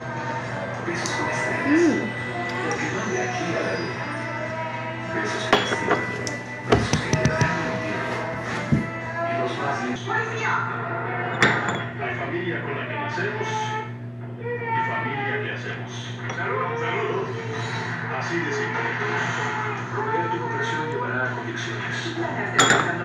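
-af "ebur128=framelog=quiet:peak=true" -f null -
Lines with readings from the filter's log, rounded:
Integrated loudness:
  I:         -24.8 LUFS
  Threshold: -34.8 LUFS
Loudness range:
  LRA:         4.0 LU
  Threshold: -45.1 LUFS
  LRA low:   -27.1 LUFS
  LRA high:  -23.1 LUFS
True peak:
  Peak:       -7.2 dBFS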